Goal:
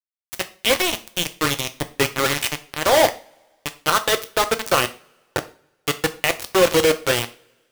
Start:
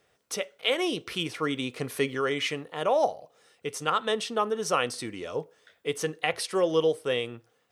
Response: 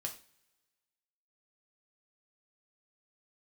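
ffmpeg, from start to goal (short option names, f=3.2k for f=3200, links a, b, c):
-filter_complex "[0:a]acrusher=bits=3:mix=0:aa=0.000001,asplit=2[a][b];[1:a]atrim=start_sample=2205[c];[b][c]afir=irnorm=-1:irlink=0,volume=1.5dB[d];[a][d]amix=inputs=2:normalize=0,volume=1dB"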